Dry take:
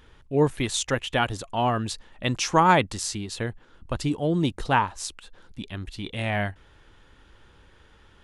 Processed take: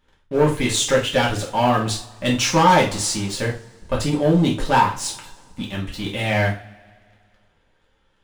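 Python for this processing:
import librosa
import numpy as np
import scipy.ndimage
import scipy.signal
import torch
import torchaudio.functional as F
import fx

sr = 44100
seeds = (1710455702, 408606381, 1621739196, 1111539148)

y = fx.leveller(x, sr, passes=3)
y = fx.rev_double_slope(y, sr, seeds[0], early_s=0.34, late_s=2.1, knee_db=-26, drr_db=-4.5)
y = F.gain(torch.from_numpy(y), -8.5).numpy()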